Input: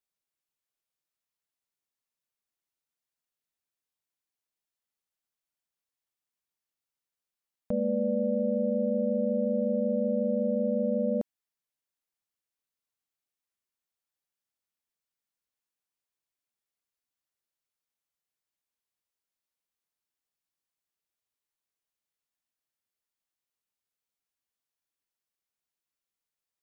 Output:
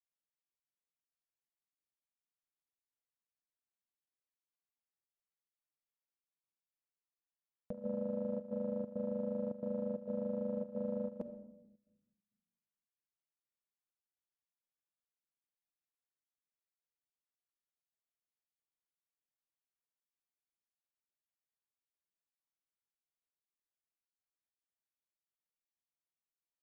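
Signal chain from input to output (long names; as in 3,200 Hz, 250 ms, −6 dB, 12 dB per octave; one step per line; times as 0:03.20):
adaptive Wiener filter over 9 samples
noise gate −25 dBFS, range −16 dB
rectangular room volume 3,900 cubic metres, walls furnished, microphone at 0.7 metres
downward compressor, threshold −40 dBFS, peak gain reduction 7 dB
gate pattern "xxxxx.xxx." 134 BPM −12 dB
level +6 dB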